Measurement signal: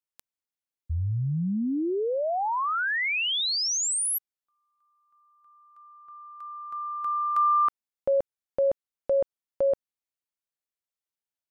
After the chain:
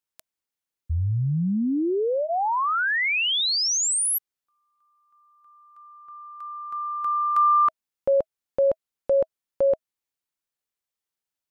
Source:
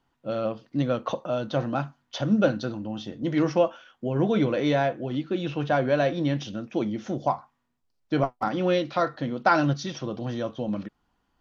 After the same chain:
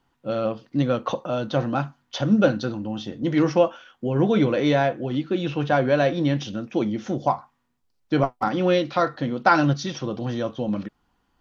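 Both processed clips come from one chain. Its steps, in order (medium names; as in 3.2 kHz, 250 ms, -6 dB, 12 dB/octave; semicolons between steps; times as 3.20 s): band-stop 640 Hz, Q 14; trim +3.5 dB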